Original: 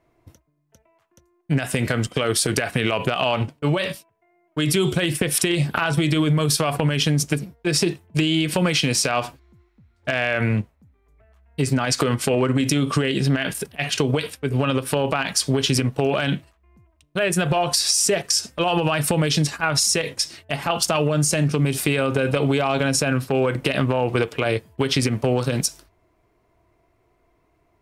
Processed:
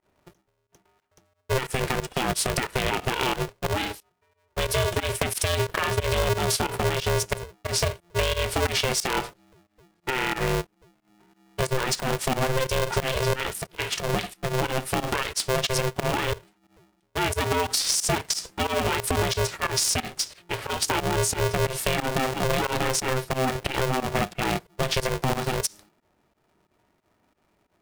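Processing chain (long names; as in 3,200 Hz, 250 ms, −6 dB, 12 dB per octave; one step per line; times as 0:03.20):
fake sidechain pumping 90 BPM, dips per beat 2, −20 dB, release 90 ms
ring modulator with a square carrier 260 Hz
level −4 dB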